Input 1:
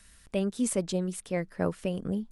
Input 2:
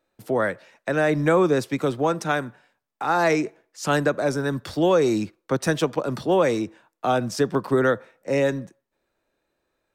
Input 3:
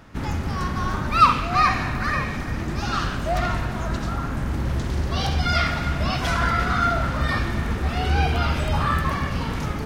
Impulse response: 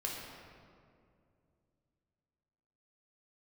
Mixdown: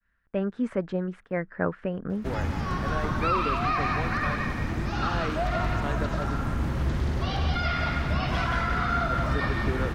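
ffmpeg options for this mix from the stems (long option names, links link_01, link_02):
-filter_complex "[0:a]agate=range=-33dB:threshold=-52dB:ratio=3:detection=peak,lowpass=frequency=1600:width_type=q:width=2.9,volume=0.5dB[link_01];[1:a]aeval=exprs='sgn(val(0))*max(abs(val(0))-0.0112,0)':channel_layout=same,adelay=1950,volume=-12.5dB,asplit=3[link_02][link_03][link_04];[link_02]atrim=end=6.35,asetpts=PTS-STARTPTS,afade=type=out:start_time=6.346:duration=0.004:curve=hsin[link_05];[link_03]atrim=start=6.35:end=9.1,asetpts=PTS-STARTPTS,volume=0[link_06];[link_04]atrim=start=9.1,asetpts=PTS-STARTPTS,afade=type=in:duration=0.004:curve=hsin[link_07];[link_05][link_06][link_07]concat=n=3:v=0:a=1[link_08];[2:a]alimiter=limit=-14.5dB:level=0:latency=1:release=102,adelay=2100,volume=-3.5dB,asplit=2[link_09][link_10];[link_10]volume=-4.5dB,aecho=0:1:176:1[link_11];[link_01][link_08][link_09][link_11]amix=inputs=4:normalize=0,acrossover=split=4200[link_12][link_13];[link_13]acompressor=threshold=-53dB:ratio=4:attack=1:release=60[link_14];[link_12][link_14]amix=inputs=2:normalize=0,agate=range=-14dB:threshold=-46dB:ratio=16:detection=peak"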